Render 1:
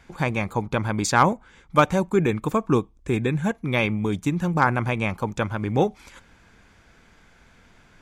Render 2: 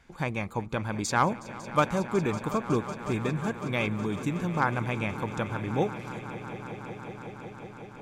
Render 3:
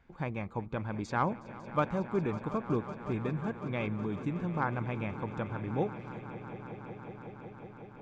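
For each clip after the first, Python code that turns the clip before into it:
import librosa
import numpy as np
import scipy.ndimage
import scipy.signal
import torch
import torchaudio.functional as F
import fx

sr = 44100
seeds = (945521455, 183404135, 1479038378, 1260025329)

y1 = fx.echo_swell(x, sr, ms=184, loudest=5, wet_db=-17)
y1 = y1 * 10.0 ** (-6.5 / 20.0)
y2 = fx.spacing_loss(y1, sr, db_at_10k=25)
y2 = y2 * 10.0 ** (-3.5 / 20.0)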